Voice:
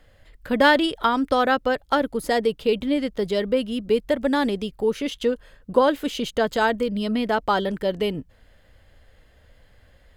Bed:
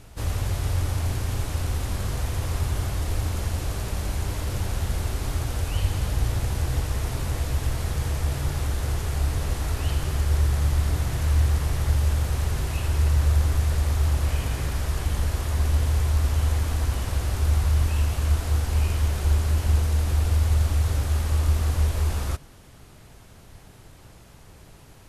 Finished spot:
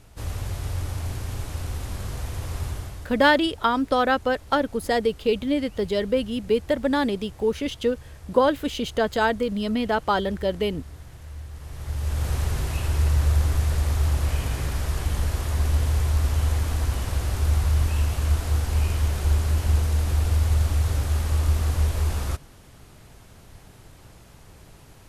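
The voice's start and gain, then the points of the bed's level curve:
2.60 s, -1.0 dB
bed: 2.69 s -4 dB
3.27 s -17.5 dB
11.5 s -17.5 dB
12.28 s 0 dB

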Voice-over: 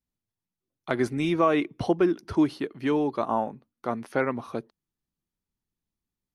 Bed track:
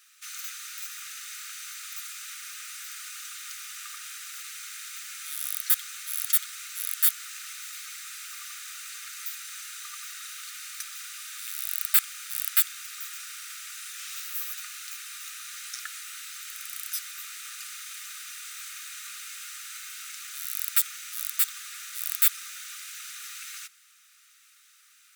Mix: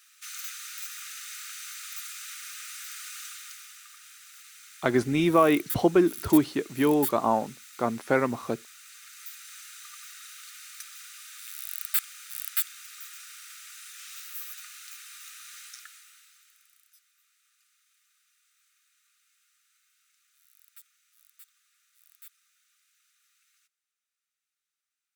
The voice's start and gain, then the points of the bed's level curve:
3.95 s, +2.0 dB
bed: 3.24 s -0.5 dB
3.87 s -10 dB
8.77 s -10 dB
9.51 s -5.5 dB
15.6 s -5.5 dB
16.95 s -29.5 dB

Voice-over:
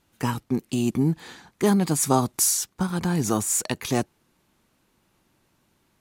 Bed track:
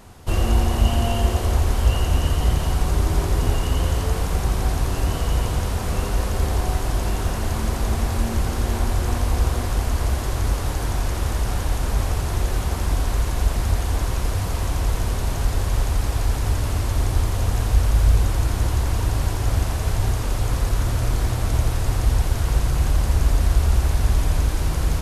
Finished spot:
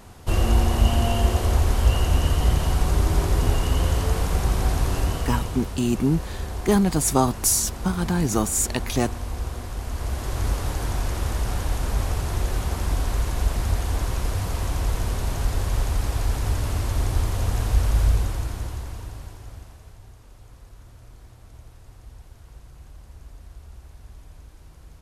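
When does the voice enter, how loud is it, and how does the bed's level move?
5.05 s, +1.0 dB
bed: 4.96 s -0.5 dB
5.76 s -9.5 dB
9.76 s -9.5 dB
10.43 s -2.5 dB
18.03 s -2.5 dB
20.03 s -25.5 dB

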